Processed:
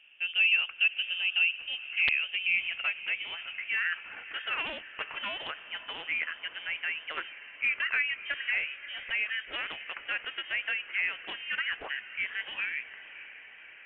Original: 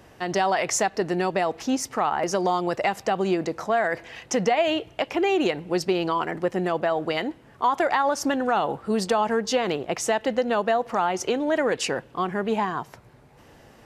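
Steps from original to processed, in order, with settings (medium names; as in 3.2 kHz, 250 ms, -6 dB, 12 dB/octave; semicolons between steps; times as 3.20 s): band-pass sweep 730 Hz -> 1.5 kHz, 1.36–3.72 s; integer overflow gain 16 dB; frequency inversion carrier 3.4 kHz; echo that smears into a reverb 582 ms, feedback 64%, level -14.5 dB; loudspeaker Doppler distortion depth 0.45 ms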